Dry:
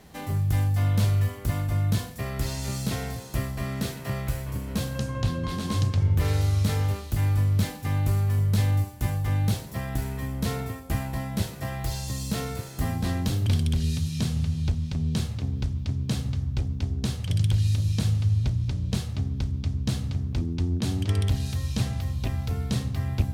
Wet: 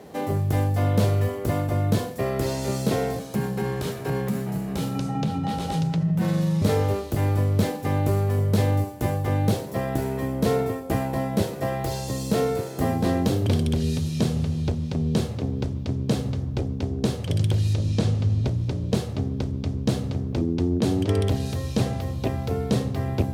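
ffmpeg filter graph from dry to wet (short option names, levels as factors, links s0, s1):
-filter_complex "[0:a]asettb=1/sr,asplit=3[s0][s1][s2];[s0]atrim=end=3.194[s3];[s1]atrim=start=3.19:end=6.62,asetpts=PTS-STARTPTS,afade=t=in:d=0.004:c=qsin,afade=t=out:st=3.426:d=0.004:c=qsin,acompressor=threshold=0.0562:ratio=2.5:attack=3.2:release=140:knee=1:detection=peak,afreqshift=-260[s4];[s2]atrim=start=6.616[s5];[s3][s4]acrossfade=d=0.004:c1=hsin:c2=qsin[s6];[s6][s5]acrossfade=d=0.004:c1=qsin:c2=hsin,asettb=1/sr,asplit=3[s7][s8][s9];[s7]atrim=end=17.734[s10];[s8]atrim=start=17.73:end=18.45,asetpts=PTS-STARTPTS,afade=t=in:d=0.004:c=qsin,afade=t=out:st=0.716:d=0.004:c=qsin,lowpass=7700,aeval=exprs='val(0)+0.0224*(sin(2*PI*50*n/s)+sin(2*PI*2*50*n/s)/2+sin(2*PI*3*50*n/s)/3+sin(2*PI*4*50*n/s)/4+sin(2*PI*5*50*n/s)/5)':c=same[s11];[s9]atrim=start=18.446[s12];[s10][s11]acrossfade=d=0.004:c1=hsin:c2=qsin[s13];[s13][s12]acrossfade=d=0.004:c1=qsin:c2=hsin,highpass=83,equalizer=f=460:t=o:w=1.9:g=14"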